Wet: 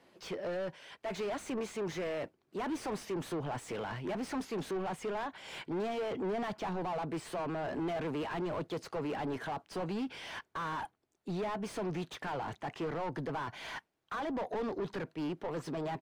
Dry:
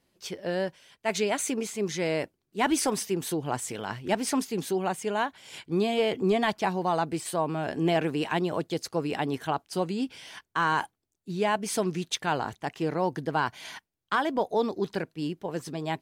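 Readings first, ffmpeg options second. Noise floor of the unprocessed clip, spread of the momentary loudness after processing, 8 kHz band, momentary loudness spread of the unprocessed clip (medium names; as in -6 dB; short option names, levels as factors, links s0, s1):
-80 dBFS, 6 LU, -16.5 dB, 9 LU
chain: -filter_complex "[0:a]acrossover=split=160[s0][s1];[s1]acompressor=threshold=0.00501:ratio=1.5[s2];[s0][s2]amix=inputs=2:normalize=0,aresample=32000,aresample=44100,asplit=2[s3][s4];[s4]highpass=f=720:p=1,volume=31.6,asoftclip=type=tanh:threshold=0.106[s5];[s3][s5]amix=inputs=2:normalize=0,lowpass=f=1000:p=1,volume=0.501,volume=0.422"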